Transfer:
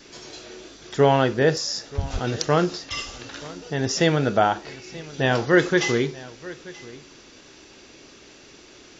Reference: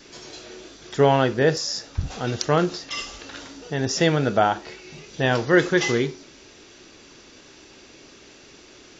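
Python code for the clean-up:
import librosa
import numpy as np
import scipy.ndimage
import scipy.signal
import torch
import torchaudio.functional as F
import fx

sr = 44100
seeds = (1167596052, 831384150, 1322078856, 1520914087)

y = fx.highpass(x, sr, hz=140.0, slope=24, at=(2.12, 2.24), fade=0.02)
y = fx.fix_echo_inverse(y, sr, delay_ms=931, level_db=-19.5)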